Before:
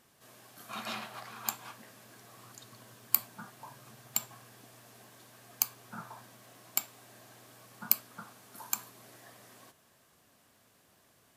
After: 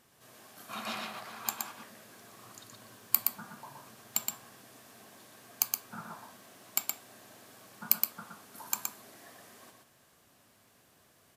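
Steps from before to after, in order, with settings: delay 120 ms -4 dB

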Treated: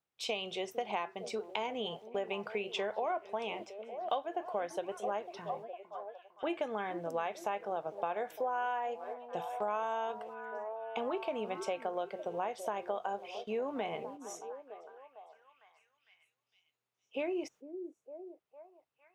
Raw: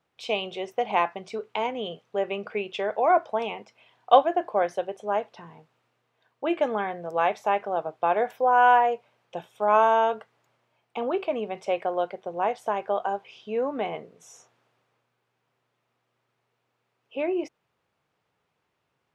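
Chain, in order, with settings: gate -50 dBFS, range -13 dB; treble shelf 4.7 kHz +11 dB; on a send: repeats whose band climbs or falls 455 ms, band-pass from 320 Hz, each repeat 0.7 oct, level -11.5 dB; on the sum: compression 6:1, threshold -28 dBFS, peak gain reduction 16.5 dB; trim -4 dB

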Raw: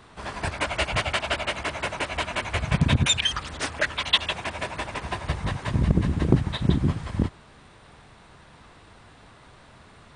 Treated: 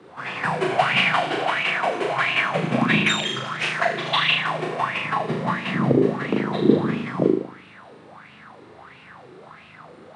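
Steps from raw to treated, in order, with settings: 5.91–6.51 s: bass shelf 150 Hz -8.5 dB; frequency shift +78 Hz; treble shelf 4.9 kHz -8.5 dB; on a send: flutter echo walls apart 6.5 m, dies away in 0.78 s; on the sum: sweeping bell 1.5 Hz 360–2700 Hz +17 dB; trim -3 dB

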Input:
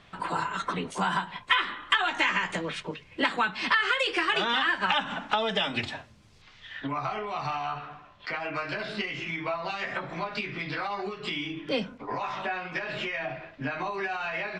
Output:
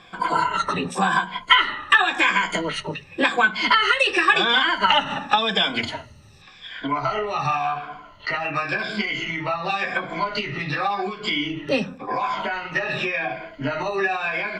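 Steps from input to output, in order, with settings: drifting ripple filter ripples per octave 1.8, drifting -0.91 Hz, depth 15 dB; hum notches 60/120/180/240 Hz; trim +5 dB

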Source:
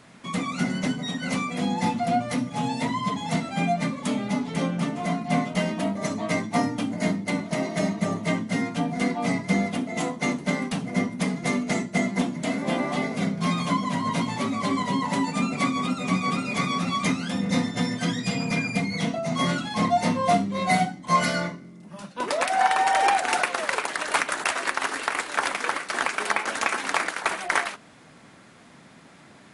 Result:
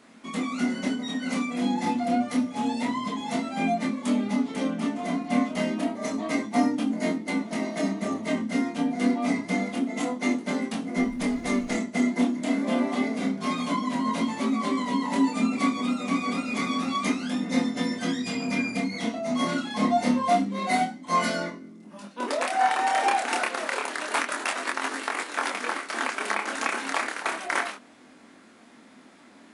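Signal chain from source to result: chorus 0.28 Hz, depth 6.6 ms; resonant low shelf 190 Hz -7.5 dB, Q 3; 10.97–11.77 s: added noise brown -44 dBFS

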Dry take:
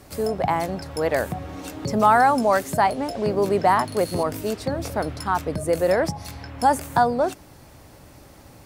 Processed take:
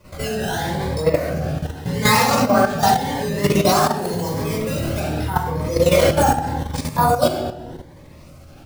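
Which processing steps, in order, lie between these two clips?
decimation with a swept rate 11×, swing 160% 0.69 Hz; 1.37–3.32 s: comb of notches 330 Hz; 6.15–6.74 s: reverse; simulated room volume 710 m³, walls mixed, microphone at 5.1 m; level held to a coarse grid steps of 10 dB; 4.02–5.00 s: treble shelf 9.3 kHz +6.5 dB; Shepard-style phaser rising 0.85 Hz; trim -2 dB

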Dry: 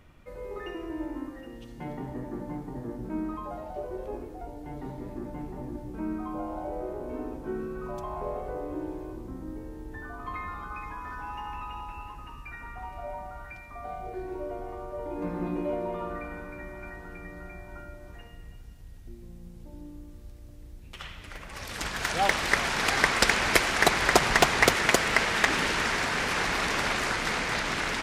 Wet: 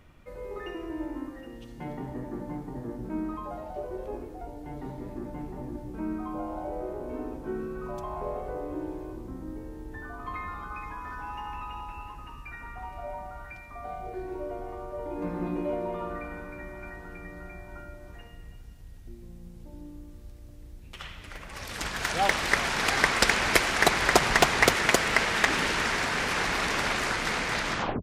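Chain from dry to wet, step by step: tape stop on the ending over 0.32 s

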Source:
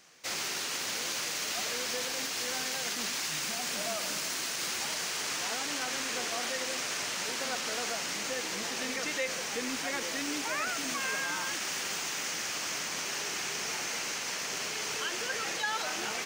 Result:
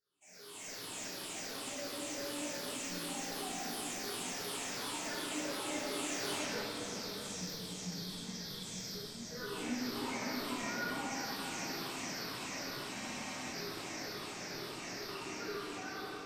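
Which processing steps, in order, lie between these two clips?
drifting ripple filter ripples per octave 0.6, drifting -2.4 Hz, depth 21 dB; Doppler pass-by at 6.32 s, 43 m/s, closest 3 m; peaking EQ 14 kHz +9.5 dB 2 oct; level rider gain up to 16.5 dB; tilt shelf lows +6.5 dB, about 770 Hz; compression 12:1, threshold -47 dBFS, peak gain reduction 30.5 dB; time-frequency box 6.61–9.33 s, 200–3100 Hz -12 dB; echo whose repeats swap between lows and highs 653 ms, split 2.4 kHz, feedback 52%, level -10 dB; reverberation RT60 2.9 s, pre-delay 3 ms, DRR -11.5 dB; spectral freeze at 12.95 s, 0.57 s

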